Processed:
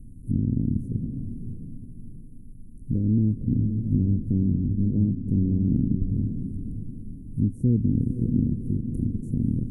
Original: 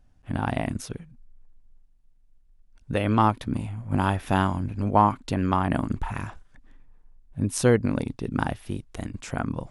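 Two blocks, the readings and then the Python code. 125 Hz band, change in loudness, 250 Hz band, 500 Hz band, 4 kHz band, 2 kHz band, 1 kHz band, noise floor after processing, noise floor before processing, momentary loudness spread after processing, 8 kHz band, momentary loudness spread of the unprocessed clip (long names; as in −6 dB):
+5.0 dB, +0.5 dB, +3.5 dB, −12.5 dB, below −40 dB, below −40 dB, below −40 dB, −41 dBFS, −58 dBFS, 14 LU, below −20 dB, 14 LU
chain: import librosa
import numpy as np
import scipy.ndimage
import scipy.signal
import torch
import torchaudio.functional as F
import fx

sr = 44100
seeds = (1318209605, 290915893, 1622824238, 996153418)

p1 = fx.bin_compress(x, sr, power=0.6)
p2 = fx.env_lowpass_down(p1, sr, base_hz=1400.0, full_db=-18.0)
p3 = scipy.signal.sosfilt(scipy.signal.cheby2(4, 60, [790.0, 4600.0], 'bandstop', fs=sr, output='sos'), p2)
p4 = p3 + fx.echo_diffused(p3, sr, ms=551, feedback_pct=40, wet_db=-8.0, dry=0)
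y = p4 * 10.0 ** (1.5 / 20.0)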